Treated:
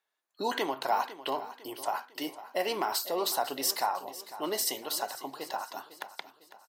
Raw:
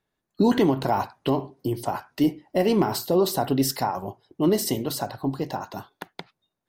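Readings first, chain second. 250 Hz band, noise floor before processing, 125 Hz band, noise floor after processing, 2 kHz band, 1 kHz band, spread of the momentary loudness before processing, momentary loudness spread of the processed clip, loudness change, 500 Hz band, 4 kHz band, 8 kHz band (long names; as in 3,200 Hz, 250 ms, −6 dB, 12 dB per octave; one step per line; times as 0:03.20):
−18.0 dB, −83 dBFS, −28.0 dB, −84 dBFS, −1.0 dB, −3.0 dB, 17 LU, 12 LU, −8.0 dB, −10.0 dB, −1.0 dB, −1.0 dB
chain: high-pass filter 760 Hz 12 dB per octave
repeating echo 502 ms, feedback 44%, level −15 dB
level −1 dB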